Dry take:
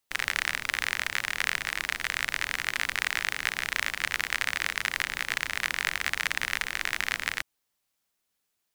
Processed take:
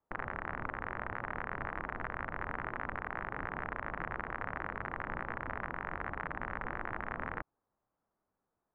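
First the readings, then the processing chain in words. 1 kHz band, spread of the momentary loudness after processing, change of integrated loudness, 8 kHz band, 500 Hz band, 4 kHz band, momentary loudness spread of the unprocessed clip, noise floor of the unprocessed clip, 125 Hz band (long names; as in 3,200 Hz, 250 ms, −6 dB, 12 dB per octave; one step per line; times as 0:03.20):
−1.0 dB, 1 LU, −11.0 dB, below −40 dB, +2.5 dB, −33.0 dB, 2 LU, −79 dBFS, +3.5 dB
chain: brickwall limiter −12.5 dBFS, peak gain reduction 7 dB
low-pass filter 1,200 Hz 24 dB per octave
level +5.5 dB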